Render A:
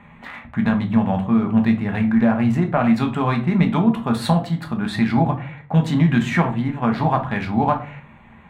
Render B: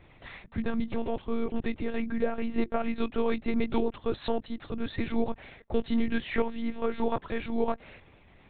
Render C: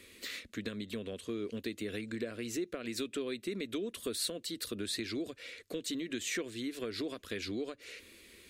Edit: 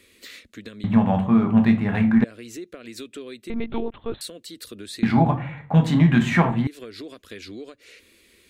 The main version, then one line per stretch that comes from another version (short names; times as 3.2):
C
0.84–2.24 from A
3.5–4.21 from B
5.03–6.67 from A